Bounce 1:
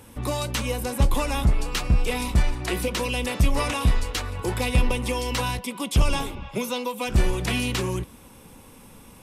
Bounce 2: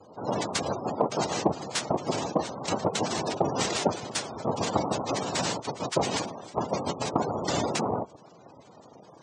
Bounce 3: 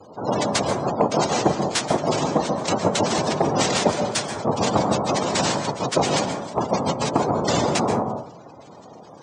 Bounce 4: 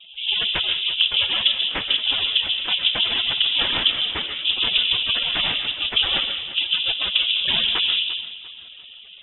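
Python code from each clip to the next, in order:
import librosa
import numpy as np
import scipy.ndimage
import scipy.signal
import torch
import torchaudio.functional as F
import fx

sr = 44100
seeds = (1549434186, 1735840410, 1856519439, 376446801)

y1 = fx.noise_vocoder(x, sr, seeds[0], bands=2)
y1 = fx.spec_gate(y1, sr, threshold_db=-15, keep='strong')
y1 = fx.cheby_harmonics(y1, sr, harmonics=(7,), levels_db=(-37,), full_scale_db=-9.0)
y2 = 10.0 ** (-14.0 / 20.0) * np.tanh(y1 / 10.0 ** (-14.0 / 20.0))
y2 = fx.rev_plate(y2, sr, seeds[1], rt60_s=0.53, hf_ratio=0.35, predelay_ms=120, drr_db=6.0)
y2 = y2 * 10.0 ** (6.5 / 20.0)
y3 = fx.echo_feedback(y2, sr, ms=346, feedback_pct=38, wet_db=-16)
y3 = fx.freq_invert(y3, sr, carrier_hz=3700)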